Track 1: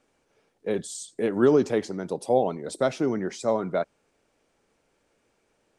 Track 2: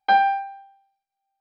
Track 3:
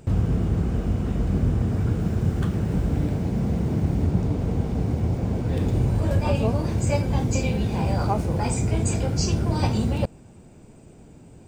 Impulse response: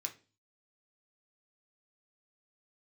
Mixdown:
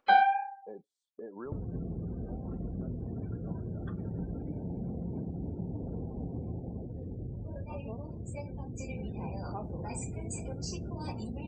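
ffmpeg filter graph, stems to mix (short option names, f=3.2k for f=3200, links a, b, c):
-filter_complex "[0:a]agate=range=-14dB:threshold=-44dB:ratio=16:detection=peak,equalizer=f=125:t=o:w=1:g=-7,equalizer=f=1k:t=o:w=1:g=10,equalizer=f=8k:t=o:w=1:g=-12,acompressor=threshold=-23dB:ratio=2,volume=-19dB[a];[1:a]acrusher=bits=9:mix=0:aa=0.000001,flanger=delay=3:depth=8.2:regen=-22:speed=1.7:shape=sinusoidal,volume=-1.5dB[b];[2:a]adelay=1450,volume=4.5dB,afade=t=out:st=6.45:d=0.5:silence=0.223872,afade=t=in:st=8.78:d=0.45:silence=0.398107,asplit=2[c][d];[d]volume=-10.5dB[e];[a][c]amix=inputs=2:normalize=0,acompressor=threshold=-34dB:ratio=10,volume=0dB[f];[3:a]atrim=start_sample=2205[g];[e][g]afir=irnorm=-1:irlink=0[h];[b][f][h]amix=inputs=3:normalize=0,afftdn=nr=34:nf=-46,acompressor=mode=upward:threshold=-39dB:ratio=2.5"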